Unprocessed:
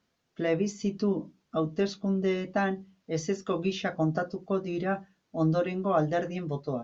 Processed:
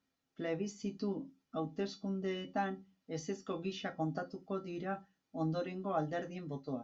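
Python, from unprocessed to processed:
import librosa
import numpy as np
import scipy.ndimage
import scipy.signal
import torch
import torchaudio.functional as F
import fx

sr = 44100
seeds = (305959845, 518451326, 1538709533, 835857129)

y = fx.comb_fb(x, sr, f0_hz=270.0, decay_s=0.22, harmonics='odd', damping=0.0, mix_pct=80)
y = y * librosa.db_to_amplitude(2.5)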